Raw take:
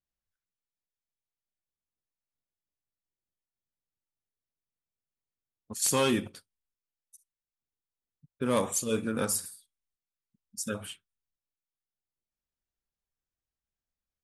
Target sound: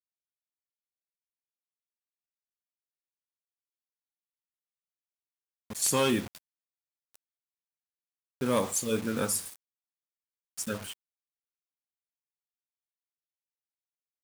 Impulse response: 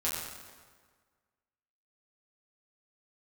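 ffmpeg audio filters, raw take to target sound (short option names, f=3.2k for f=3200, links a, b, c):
-af "acrusher=bits=6:mix=0:aa=0.000001"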